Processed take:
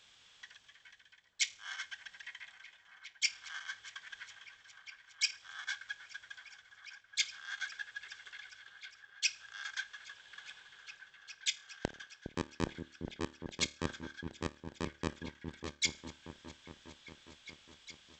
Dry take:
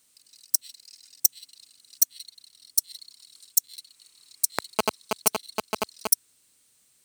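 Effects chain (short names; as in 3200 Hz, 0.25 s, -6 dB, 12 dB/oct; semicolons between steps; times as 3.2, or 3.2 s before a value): reverse; compressor 5:1, threshold -37 dBFS, peak gain reduction 21 dB; reverse; resonator 95 Hz, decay 0.15 s, harmonics all, mix 40%; wide varispeed 0.387×; repeats that get brighter 0.41 s, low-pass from 400 Hz, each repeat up 1 oct, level -6 dB; gain +4 dB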